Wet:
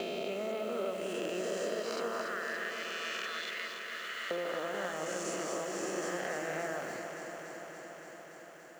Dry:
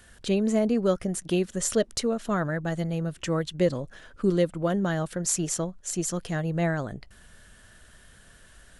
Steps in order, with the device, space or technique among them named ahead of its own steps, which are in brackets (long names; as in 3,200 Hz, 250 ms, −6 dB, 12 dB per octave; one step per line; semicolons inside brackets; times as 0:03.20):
peak hold with a rise ahead of every peak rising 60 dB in 2.62 s
0:02.21–0:04.31: high-pass filter 1,500 Hz 24 dB per octave
baby monitor (band-pass filter 430–3,400 Hz; downward compressor, threshold −35 dBFS, peak gain reduction 15.5 dB; white noise bed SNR 24 dB; noise gate −46 dBFS, range −10 dB)
parametric band 3,700 Hz −5 dB 0.38 octaves
delay that swaps between a low-pass and a high-pass 143 ms, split 960 Hz, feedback 89%, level −6 dB